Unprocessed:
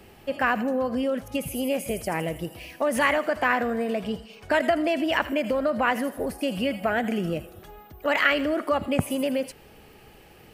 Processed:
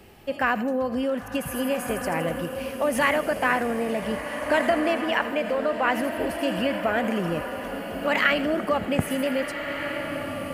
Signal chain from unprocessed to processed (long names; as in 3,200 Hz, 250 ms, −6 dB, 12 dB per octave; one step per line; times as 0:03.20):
0:04.94–0:05.90: bass and treble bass −12 dB, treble −5 dB
slow-attack reverb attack 1,660 ms, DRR 6 dB